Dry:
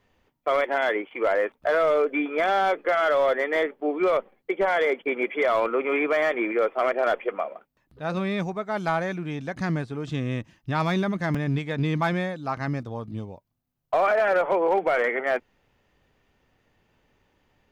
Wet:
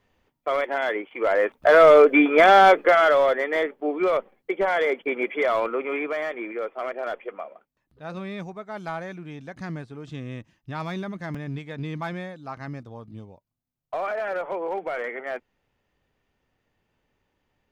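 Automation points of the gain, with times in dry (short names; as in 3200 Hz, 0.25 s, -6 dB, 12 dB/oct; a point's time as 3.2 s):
1.13 s -1.5 dB
1.82 s +9 dB
2.69 s +9 dB
3.4 s 0 dB
5.47 s 0 dB
6.39 s -7 dB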